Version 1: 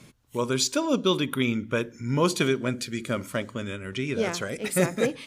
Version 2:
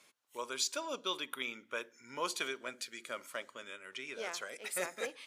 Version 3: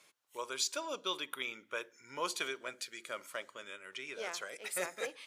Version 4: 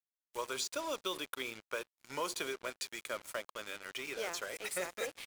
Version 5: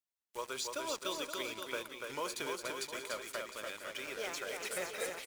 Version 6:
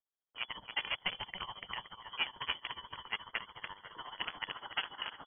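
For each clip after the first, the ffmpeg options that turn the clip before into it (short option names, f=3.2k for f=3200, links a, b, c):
-af "highpass=670,volume=-8.5dB"
-af "equalizer=f=240:w=8:g=-10.5"
-filter_complex "[0:a]asplit=2[a][b];[b]adelay=355.7,volume=-30dB,highshelf=f=4k:g=-8[c];[a][c]amix=inputs=2:normalize=0,acrossover=split=770|7000[d][e][f];[d]acompressor=threshold=-42dB:ratio=4[g];[e]acompressor=threshold=-44dB:ratio=4[h];[f]acompressor=threshold=-49dB:ratio=4[i];[g][h][i]amix=inputs=3:normalize=0,acrusher=bits=7:mix=0:aa=0.5,volume=4.5dB"
-af "aecho=1:1:290|522|707.6|856.1|974.9:0.631|0.398|0.251|0.158|0.1,volume=-2dB"
-filter_complex "[0:a]acrossover=split=360|1800|2500[a][b][c][d];[b]acrusher=bits=5:mix=0:aa=0.000001[e];[a][e][c][d]amix=inputs=4:normalize=0,tremolo=f=14:d=0.83,lowpass=f=2.9k:t=q:w=0.5098,lowpass=f=2.9k:t=q:w=0.6013,lowpass=f=2.9k:t=q:w=0.9,lowpass=f=2.9k:t=q:w=2.563,afreqshift=-3400,volume=6dB"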